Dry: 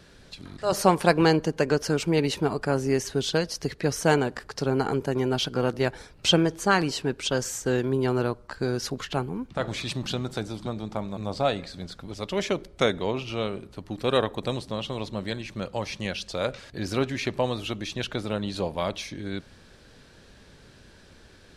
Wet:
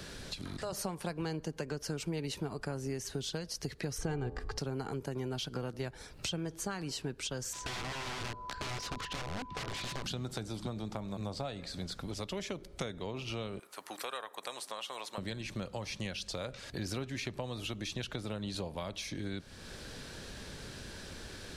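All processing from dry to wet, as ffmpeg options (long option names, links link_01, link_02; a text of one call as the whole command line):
ffmpeg -i in.wav -filter_complex "[0:a]asettb=1/sr,asplit=3[link_01][link_02][link_03];[link_01]atrim=end=3.984[link_04];[link_02]atrim=start=3.98:end=4.58,asetpts=PTS-STARTPTS,afade=type=in:duration=0.004:curve=qsin,afade=type=out:start_time=0.596:duration=0.004:curve=qsin,aemphasis=mode=reproduction:type=bsi,aecho=1:1:2.5:0.5,atrim=end_sample=26460,bandreject=frequency=85.55:width_type=h:width=4,bandreject=frequency=171.1:width_type=h:width=4,bandreject=frequency=256.65:width_type=h:width=4,bandreject=frequency=342.2:width_type=h:width=4,bandreject=frequency=427.75:width_type=h:width=4,bandreject=frequency=513.3:width_type=h:width=4,bandreject=frequency=598.85:width_type=h:width=4,bandreject=frequency=684.4:width_type=h:width=4,bandreject=frequency=769.95:width_type=h:width=4,bandreject=frequency=855.5:width_type=h:width=4,bandreject=frequency=941.05:width_type=h:width=4,bandreject=frequency=1026.6:width_type=h:width=4,bandreject=frequency=1112.15:width_type=h:width=4,bandreject=frequency=1197.7:width_type=h:width=4[link_05];[link_03]atrim=start=4.576[link_06];[link_04][link_05]acrossfade=duration=0.004:curve1=hsin:curve2=qsin[link_07];[link_07][link_06]acrossfade=duration=0.004:curve1=qsin:curve2=hsin,asettb=1/sr,asplit=3[link_08][link_09][link_10];[link_08]atrim=end=7.534[link_11];[link_09]atrim=start=7.53:end=10.04,asetpts=PTS-STARTPTS,afade=type=in:duration=0.004:curve=qsin,afade=type=out:start_time=2.506:duration=0.004:curve=qsin,aeval=exprs='(mod(23.7*val(0)+1,2)-1)/23.7':channel_layout=same,lowpass=4900,aeval=exprs='val(0)+0.00794*sin(2*PI*1000*n/s)':channel_layout=same[link_12];[link_10]atrim=start=10.036[link_13];[link_11][link_12]acrossfade=duration=0.004:curve1=hsin:curve2=qsin[link_14];[link_14][link_13]acrossfade=duration=0.004:curve1=qsin:curve2=hsin,asettb=1/sr,asplit=3[link_15][link_16][link_17];[link_15]atrim=end=13.594[link_18];[link_16]atrim=start=13.59:end=15.18,asetpts=PTS-STARTPTS,afade=type=in:duration=0.004:curve=qsin,afade=type=out:start_time=1.586:duration=0.004:curve=qsin,highpass=1200,equalizer=frequency=3900:width=0.63:gain=-11,acontrast=85[link_19];[link_17]atrim=start=15.176[link_20];[link_18][link_19]acrossfade=duration=0.004:curve1=hsin:curve2=qsin[link_21];[link_21][link_20]acrossfade=duration=0.004:curve1=qsin:curve2=hsin,acompressor=threshold=-48dB:ratio=2,highshelf=frequency=4600:gain=6.5,acrossover=split=170[link_22][link_23];[link_23]acompressor=threshold=-44dB:ratio=3[link_24];[link_22][link_24]amix=inputs=2:normalize=0,volume=6dB" out.wav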